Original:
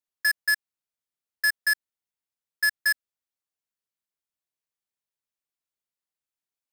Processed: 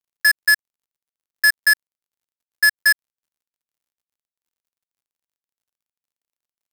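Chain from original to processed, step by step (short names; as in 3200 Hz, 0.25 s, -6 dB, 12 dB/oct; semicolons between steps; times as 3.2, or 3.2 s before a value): G.711 law mismatch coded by mu; gain +7.5 dB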